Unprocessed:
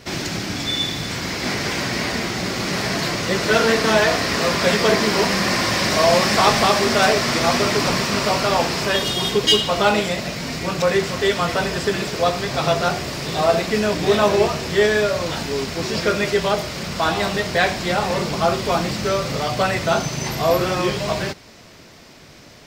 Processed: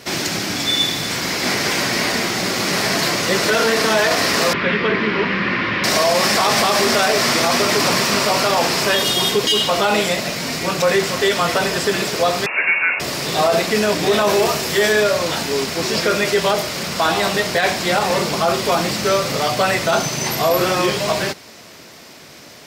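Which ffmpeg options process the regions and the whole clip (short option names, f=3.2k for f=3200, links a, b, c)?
-filter_complex "[0:a]asettb=1/sr,asplit=3[a][b][c];[a]atrim=end=4.534[d];[b]atrim=start=4.53:end=5.84,asetpts=PTS-STARTPTS,afade=t=in:d=0.004:c=qsin,afade=t=out:st=1.306:d=0.004:c=qsin,lowpass=f=2.8k:w=0.5412,lowpass=f=2.8k:w=1.3066,equalizer=f=700:t=o:w=0.86:g=-13.5[e];[c]atrim=start=5.836[f];[d][e]acrossfade=d=0.004:c1=hsin:c2=qsin[g];[g][f]acrossfade=d=0.004:c1=qsin:c2=hsin,asettb=1/sr,asplit=3[h][i][j];[h]atrim=end=12.464[k];[i]atrim=start=12.46:end=13,asetpts=PTS-STARTPTS,afade=t=in:d=0.004:c=qsin,afade=t=out:st=0.536:d=0.004:c=qsin,highpass=f=260:p=1,lowpass=f=2.5k:t=q:w=0.5098,lowpass=f=2.5k:t=q:w=0.6013,lowpass=f=2.5k:t=q:w=0.9,lowpass=f=2.5k:t=q:w=2.563,afreqshift=-2900[l];[j]atrim=start=12.996[m];[k][l]acrossfade=d=0.004:c1=hsin:c2=qsin[n];[n][m]acrossfade=d=0.004:c1=qsin:c2=hsin,asettb=1/sr,asplit=3[o][p][q];[o]atrim=end=14.294[r];[p]atrim=start=14.29:end=14.93,asetpts=PTS-STARTPTS,afade=t=in:d=0.004:c=qsin,afade=t=out:st=0.636:d=0.004:c=qsin,highshelf=f=8.5k:g=7.5,bandreject=f=60:t=h:w=6,bandreject=f=120:t=h:w=6,bandreject=f=180:t=h:w=6,bandreject=f=240:t=h:w=6,bandreject=f=300:t=h:w=6,bandreject=f=360:t=h:w=6,bandreject=f=420:t=h:w=6,bandreject=f=480:t=h:w=6,bandreject=f=540:t=h:w=6,bandreject=f=600:t=h:w=6,asoftclip=type=hard:threshold=-10dB[s];[q]atrim=start=14.926[t];[r][s]acrossfade=d=0.004:c1=hsin:c2=qsin[u];[u][t]acrossfade=d=0.004:c1=qsin:c2=hsin,highpass=f=230:p=1,equalizer=f=12k:w=0.88:g=7,alimiter=limit=-11.5dB:level=0:latency=1:release=22,volume=4.5dB"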